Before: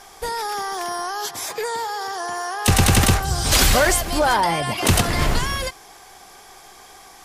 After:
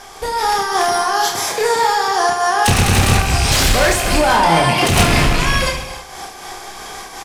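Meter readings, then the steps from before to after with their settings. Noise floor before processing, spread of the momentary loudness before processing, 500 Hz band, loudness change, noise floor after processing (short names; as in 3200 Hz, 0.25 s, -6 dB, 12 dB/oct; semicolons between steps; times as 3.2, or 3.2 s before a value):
-45 dBFS, 12 LU, +6.5 dB, +5.5 dB, -35 dBFS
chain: rattling part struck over -25 dBFS, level -13 dBFS; in parallel at -1 dB: compressor, threshold -25 dBFS, peak gain reduction 13 dB; on the sum: soft clip -15 dBFS, distortion -10 dB; on a send: reverse bouncing-ball echo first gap 30 ms, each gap 1.4×, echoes 5; on the sum: non-linear reverb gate 0.31 s rising, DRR 11 dB; AGC gain up to 5.5 dB; high shelf 12000 Hz -10 dB; noise-modulated level, depth 55%; gain +3 dB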